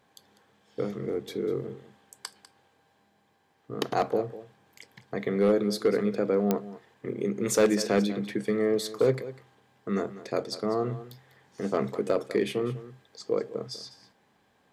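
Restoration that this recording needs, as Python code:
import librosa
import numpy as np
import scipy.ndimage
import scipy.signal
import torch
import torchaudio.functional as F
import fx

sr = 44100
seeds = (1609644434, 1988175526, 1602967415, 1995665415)

y = fx.fix_declip(x, sr, threshold_db=-15.5)
y = fx.fix_declick_ar(y, sr, threshold=10.0)
y = fx.fix_echo_inverse(y, sr, delay_ms=198, level_db=-15.5)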